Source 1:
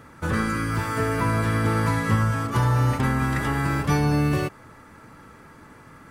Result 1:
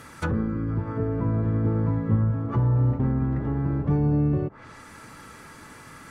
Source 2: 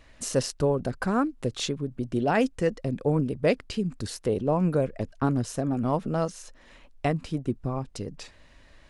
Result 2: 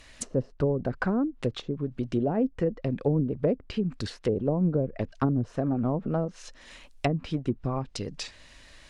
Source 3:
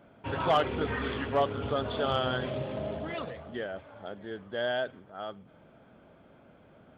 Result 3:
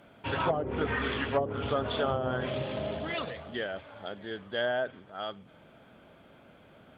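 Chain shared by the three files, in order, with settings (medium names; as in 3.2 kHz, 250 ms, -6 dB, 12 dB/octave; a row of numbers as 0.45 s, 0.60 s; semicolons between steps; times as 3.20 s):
treble shelf 2.3 kHz +12 dB; low-pass that closes with the level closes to 450 Hz, closed at -20 dBFS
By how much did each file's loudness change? -1.5 LU, -1.0 LU, -0.5 LU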